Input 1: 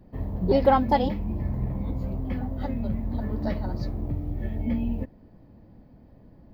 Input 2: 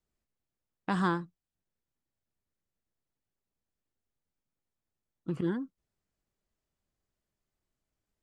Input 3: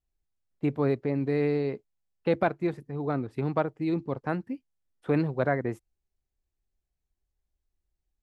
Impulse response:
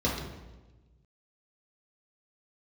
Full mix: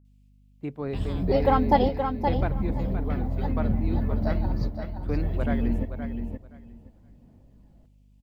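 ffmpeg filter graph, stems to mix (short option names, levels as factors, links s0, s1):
-filter_complex "[0:a]aphaser=in_gain=1:out_gain=1:delay=1.5:decay=0.35:speed=1:type=sinusoidal,adelay=800,volume=0.841,asplit=2[s0][s1];[s1]volume=0.473[s2];[1:a]highshelf=f=2000:t=q:w=3:g=9,alimiter=limit=0.0668:level=0:latency=1:release=499,acompressor=threshold=0.00794:ratio=2,adelay=50,volume=0.75[s3];[2:a]volume=0.473,asplit=3[s4][s5][s6];[s5]volume=0.355[s7];[s6]apad=whole_len=323503[s8];[s0][s8]sidechaingate=range=0.0224:threshold=0.00158:ratio=16:detection=peak[s9];[s2][s7]amix=inputs=2:normalize=0,aecho=0:1:521|1042|1563:1|0.17|0.0289[s10];[s9][s3][s4][s10]amix=inputs=4:normalize=0,aeval=exprs='val(0)+0.00158*(sin(2*PI*50*n/s)+sin(2*PI*2*50*n/s)/2+sin(2*PI*3*50*n/s)/3+sin(2*PI*4*50*n/s)/4+sin(2*PI*5*50*n/s)/5)':c=same"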